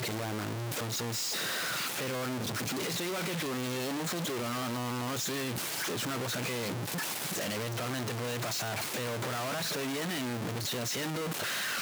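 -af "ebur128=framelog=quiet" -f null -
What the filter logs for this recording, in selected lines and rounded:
Integrated loudness:
  I:         -33.1 LUFS
  Threshold: -43.1 LUFS
Loudness range:
  LRA:         0.8 LU
  Threshold: -53.1 LUFS
  LRA low:   -33.4 LUFS
  LRA high:  -32.6 LUFS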